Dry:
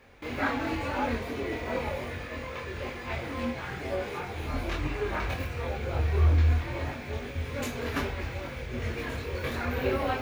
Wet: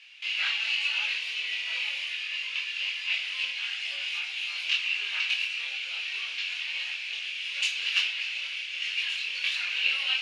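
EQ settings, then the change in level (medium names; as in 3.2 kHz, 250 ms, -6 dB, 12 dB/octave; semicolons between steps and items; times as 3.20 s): resonant high-pass 2.8 kHz, resonance Q 8.4; low-pass 9.4 kHz 24 dB/octave; peaking EQ 4.8 kHz +6.5 dB 0.74 oct; +1.5 dB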